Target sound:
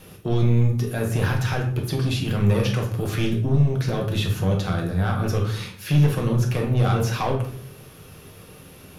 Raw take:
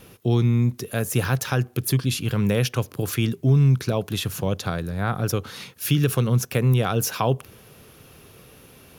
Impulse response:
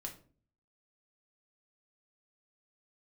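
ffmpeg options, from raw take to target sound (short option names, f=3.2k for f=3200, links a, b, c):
-filter_complex "[0:a]acrossover=split=4400[a][b];[b]acompressor=threshold=-41dB:ratio=4:attack=1:release=60[c];[a][c]amix=inputs=2:normalize=0,asoftclip=type=tanh:threshold=-17.5dB[d];[1:a]atrim=start_sample=2205,asetrate=26901,aresample=44100[e];[d][e]afir=irnorm=-1:irlink=0,volume=2.5dB"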